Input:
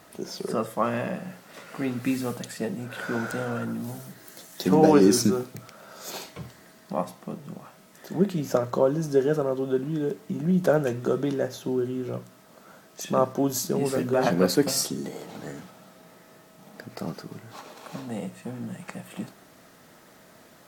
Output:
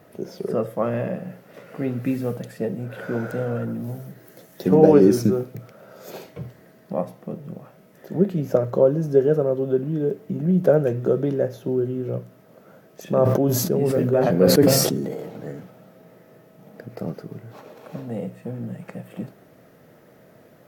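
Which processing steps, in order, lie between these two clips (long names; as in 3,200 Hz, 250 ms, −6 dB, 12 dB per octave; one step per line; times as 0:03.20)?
octave-band graphic EQ 125/500/1,000/4,000/8,000 Hz +8/+8/−5/−6/−10 dB
0:13.01–0:15.29: level that may fall only so fast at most 34 dB per second
level −1 dB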